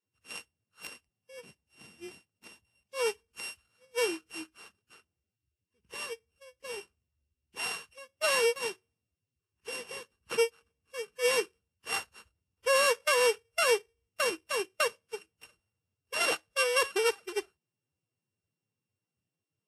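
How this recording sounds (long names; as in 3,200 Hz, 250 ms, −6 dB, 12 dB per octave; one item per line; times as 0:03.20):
a buzz of ramps at a fixed pitch in blocks of 16 samples
Ogg Vorbis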